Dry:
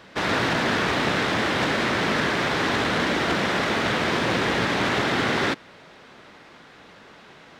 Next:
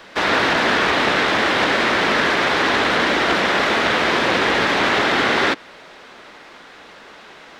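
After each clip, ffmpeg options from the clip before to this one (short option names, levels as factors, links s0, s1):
-filter_complex "[0:a]acrossover=split=370|800|5300[s0][s1][s2][s3];[s3]alimiter=level_in=6.31:limit=0.0631:level=0:latency=1:release=87,volume=0.158[s4];[s0][s1][s2][s4]amix=inputs=4:normalize=0,equalizer=f=120:w=0.7:g=-11.5,volume=2.24"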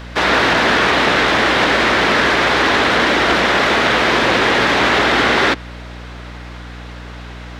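-filter_complex "[0:a]asplit=2[s0][s1];[s1]asoftclip=type=tanh:threshold=0.133,volume=0.422[s2];[s0][s2]amix=inputs=2:normalize=0,aeval=exprs='val(0)+0.0224*(sin(2*PI*60*n/s)+sin(2*PI*2*60*n/s)/2+sin(2*PI*3*60*n/s)/3+sin(2*PI*4*60*n/s)/4+sin(2*PI*5*60*n/s)/5)':c=same,volume=1.19"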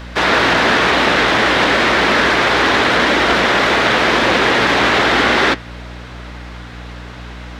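-af "flanger=delay=3.3:depth=8:regen=-74:speed=0.94:shape=sinusoidal,volume=1.78"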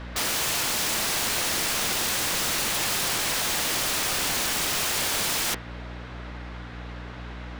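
-af "aemphasis=mode=reproduction:type=cd,aeval=exprs='(mod(5.62*val(0)+1,2)-1)/5.62':c=same,volume=0.473"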